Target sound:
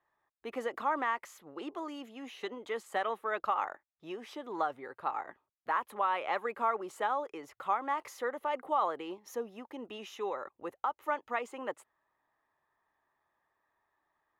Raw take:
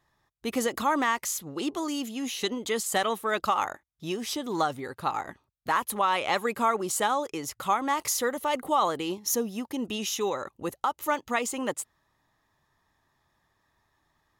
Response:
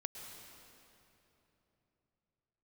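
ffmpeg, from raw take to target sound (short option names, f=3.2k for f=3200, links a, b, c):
-filter_complex "[0:a]acrossover=split=340 2500:gain=0.158 1 0.1[a][b][c];[a][b][c]amix=inputs=3:normalize=0,volume=-5dB"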